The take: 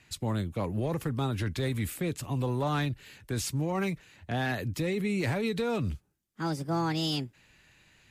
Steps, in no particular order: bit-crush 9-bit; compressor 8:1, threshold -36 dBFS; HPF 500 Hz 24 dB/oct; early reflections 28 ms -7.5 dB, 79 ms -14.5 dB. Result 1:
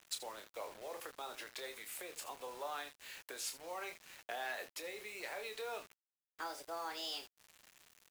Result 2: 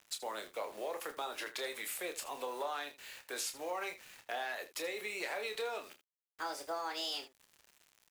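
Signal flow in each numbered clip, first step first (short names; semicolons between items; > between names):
early reflections > compressor > HPF > bit-crush; HPF > bit-crush > compressor > early reflections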